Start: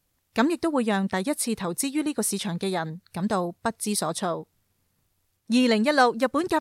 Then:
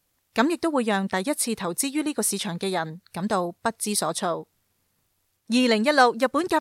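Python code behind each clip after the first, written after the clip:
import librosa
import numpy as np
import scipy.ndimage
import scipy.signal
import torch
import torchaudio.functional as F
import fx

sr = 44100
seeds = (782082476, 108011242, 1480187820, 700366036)

y = fx.low_shelf(x, sr, hz=220.0, db=-7.0)
y = F.gain(torch.from_numpy(y), 2.5).numpy()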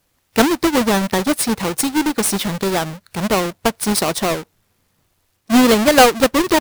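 y = fx.halfwave_hold(x, sr)
y = F.gain(torch.from_numpy(y), 3.0).numpy()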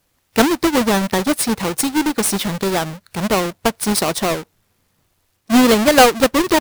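y = x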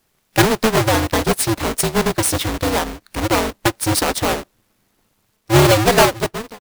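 y = fx.fade_out_tail(x, sr, length_s=0.8)
y = y * np.sign(np.sin(2.0 * np.pi * 110.0 * np.arange(len(y)) / sr))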